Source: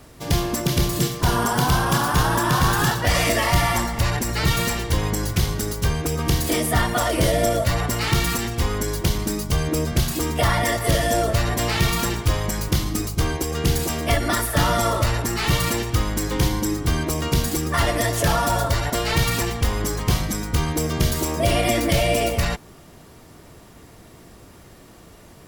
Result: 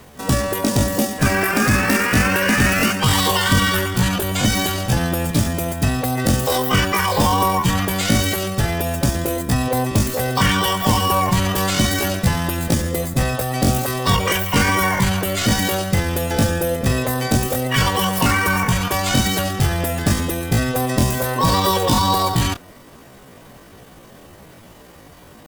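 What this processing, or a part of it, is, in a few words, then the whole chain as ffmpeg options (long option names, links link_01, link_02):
chipmunk voice: -af "asetrate=72056,aresample=44100,atempo=0.612027,volume=3dB"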